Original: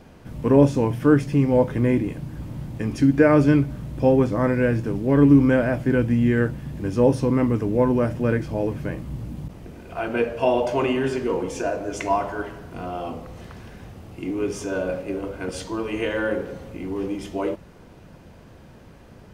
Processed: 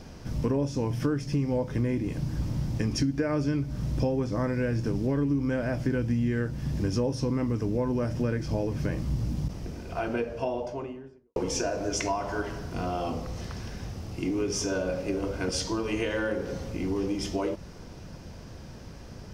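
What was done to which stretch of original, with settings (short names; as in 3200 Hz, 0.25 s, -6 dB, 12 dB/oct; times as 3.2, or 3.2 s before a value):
9.51–11.36 studio fade out
whole clip: bell 5400 Hz +13 dB 0.64 oct; compressor 6:1, threshold -26 dBFS; low shelf 130 Hz +6.5 dB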